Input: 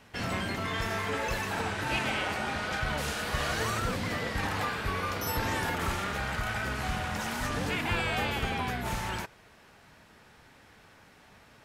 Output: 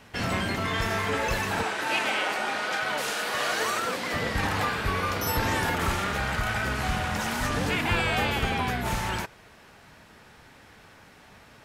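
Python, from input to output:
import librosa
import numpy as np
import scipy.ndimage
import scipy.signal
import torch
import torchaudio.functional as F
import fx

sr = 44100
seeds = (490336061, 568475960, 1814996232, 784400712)

y = fx.highpass(x, sr, hz=340.0, slope=12, at=(1.63, 4.14))
y = F.gain(torch.from_numpy(y), 4.5).numpy()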